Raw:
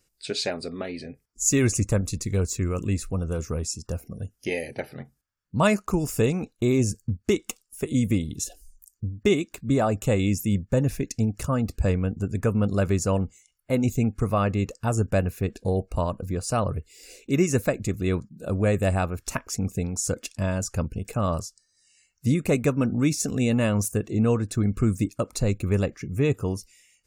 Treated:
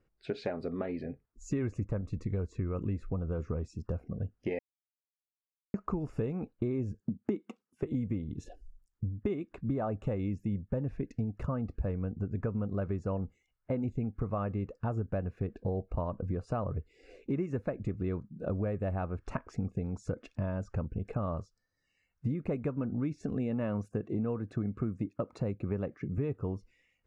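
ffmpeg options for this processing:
ffmpeg -i in.wav -filter_complex "[0:a]asettb=1/sr,asplit=3[link_01][link_02][link_03];[link_01]atrim=end=7.004[link_04];[link_02]atrim=start=7:end=7.83,asetpts=PTS-STARTPTS,afade=type=in:duration=0.004:curve=qsin,afade=type=out:start_time=0.826:duration=0.004:curve=qsin,highpass=frequency=210:width_type=q:width=2.4[link_05];[link_03]atrim=start=7.826[link_06];[link_04][link_05]acrossfade=duration=0.004:curve1=hsin:curve2=qsin[link_07];[link_07][link_06]acrossfade=duration=0.004:curve1=qsin:curve2=hsin,asettb=1/sr,asplit=3[link_08][link_09][link_10];[link_08]atrim=end=23.344[link_11];[link_09]atrim=start=23.34:end=26.18,asetpts=PTS-STARTPTS,afade=type=in:duration=0.004:curve=qsin,afade=type=out:start_time=2.836:duration=0.004:curve=qsin,highpass=110[link_12];[link_10]atrim=start=26.176[link_13];[link_11][link_12]acrossfade=duration=0.004:curve1=hsin:curve2=qsin[link_14];[link_14][link_13]acrossfade=duration=0.004:curve1=qsin:curve2=hsin,asplit=3[link_15][link_16][link_17];[link_15]atrim=end=4.59,asetpts=PTS-STARTPTS,afade=type=out:start_time=4.586:duration=0.004:curve=hsin[link_18];[link_16]atrim=start=4.59:end=5.74,asetpts=PTS-STARTPTS,volume=0[link_19];[link_17]atrim=start=5.74,asetpts=PTS-STARTPTS,afade=type=in:duration=0.004:curve=hsin[link_20];[link_18][link_19][link_20]concat=n=3:v=0:a=1,lowpass=1400,acompressor=threshold=-30dB:ratio=6" out.wav

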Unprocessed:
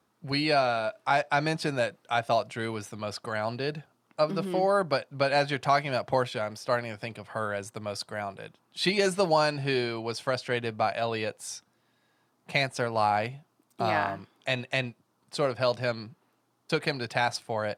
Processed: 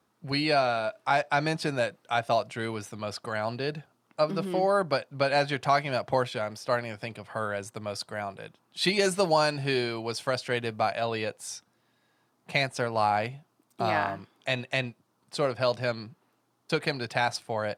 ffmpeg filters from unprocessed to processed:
ffmpeg -i in.wav -filter_complex "[0:a]asettb=1/sr,asplit=3[link_01][link_02][link_03];[link_01]atrim=end=8.814[link_04];[link_02]atrim=start=8.81:end=10.91,asetpts=PTS-STARTPTS,afade=type=in:duration=0.004:curve=qsin,afade=type=out:start_time=2.096:duration=0.004:curve=qsin,highshelf=frequency=6200:gain=5[link_05];[link_03]atrim=start=10.906[link_06];[link_04][link_05]acrossfade=duration=0.004:curve1=hsin:curve2=qsin[link_07];[link_07][link_06]acrossfade=duration=0.004:curve1=qsin:curve2=hsin" out.wav

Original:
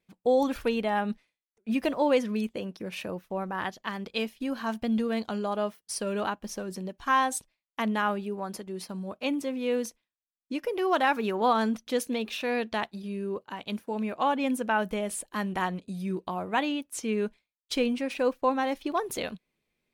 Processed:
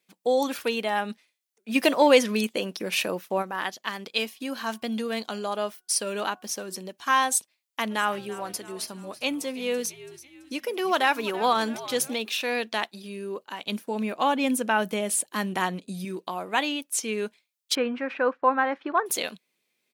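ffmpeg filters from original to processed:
ffmpeg -i in.wav -filter_complex "[0:a]asplit=3[link_01][link_02][link_03];[link_01]afade=type=out:start_time=1.74:duration=0.02[link_04];[link_02]acontrast=58,afade=type=in:start_time=1.74:duration=0.02,afade=type=out:start_time=3.41:duration=0.02[link_05];[link_03]afade=type=in:start_time=3.41:duration=0.02[link_06];[link_04][link_05][link_06]amix=inputs=3:normalize=0,asettb=1/sr,asplit=3[link_07][link_08][link_09];[link_07]atrim=end=4.154[link_10];[link_08]atrim=start=4.15:end=6.8,asetpts=PTS-STARTPTS,afade=type=in:duration=0.004:curve=qsin,afade=type=out:start_time=2.646:duration=0.004:curve=qsin,bandreject=frequency=367.2:width_type=h:width=4,bandreject=frequency=734.4:width_type=h:width=4,bandreject=frequency=1101.6:width_type=h:width=4,bandreject=frequency=1468.8:width_type=h:width=4[link_11];[link_09]atrim=start=6.796[link_12];[link_10][link_11]acrossfade=duration=0.004:curve1=hsin:curve2=qsin[link_13];[link_13][link_12]acrossfade=duration=0.004:curve1=qsin:curve2=hsin,asplit=3[link_14][link_15][link_16];[link_14]afade=type=out:start_time=7.9:duration=0.02[link_17];[link_15]asplit=6[link_18][link_19][link_20][link_21][link_22][link_23];[link_19]adelay=333,afreqshift=-85,volume=-16dB[link_24];[link_20]adelay=666,afreqshift=-170,volume=-21.4dB[link_25];[link_21]adelay=999,afreqshift=-255,volume=-26.7dB[link_26];[link_22]adelay=1332,afreqshift=-340,volume=-32.1dB[link_27];[link_23]adelay=1665,afreqshift=-425,volume=-37.4dB[link_28];[link_18][link_24][link_25][link_26][link_27][link_28]amix=inputs=6:normalize=0,afade=type=in:start_time=7.9:duration=0.02,afade=type=out:start_time=12.13:duration=0.02[link_29];[link_16]afade=type=in:start_time=12.13:duration=0.02[link_30];[link_17][link_29][link_30]amix=inputs=3:normalize=0,asettb=1/sr,asplit=3[link_31][link_32][link_33];[link_31]atrim=end=13.654[link_34];[link_32]atrim=start=13.65:end=16.05,asetpts=PTS-STARTPTS,afade=type=in:duration=0.004:curve=qsin,afade=type=out:start_time=2.396:duration=0.004:curve=qsin,equalizer=frequency=94:width=0.31:gain=8[link_35];[link_33]atrim=start=16.046[link_36];[link_34][link_35]acrossfade=duration=0.004:curve1=hsin:curve2=qsin[link_37];[link_37][link_36]acrossfade=duration=0.004:curve1=qsin:curve2=hsin,asettb=1/sr,asplit=3[link_38][link_39][link_40];[link_38]atrim=end=17.754[link_41];[link_39]atrim=start=17.75:end=19.06,asetpts=PTS-STARTPTS,afade=type=in:duration=0.004:curve=qsin,afade=type=out:start_time=1.306:duration=0.004:curve=qsin,lowpass=frequency=1500:width_type=q:width=2.5[link_42];[link_40]atrim=start=19.056[link_43];[link_41][link_42]acrossfade=duration=0.004:curve1=hsin:curve2=qsin[link_44];[link_44][link_43]acrossfade=duration=0.004:curve1=qsin:curve2=hsin,highpass=240,highshelf=frequency=2400:gain=10.5" out.wav

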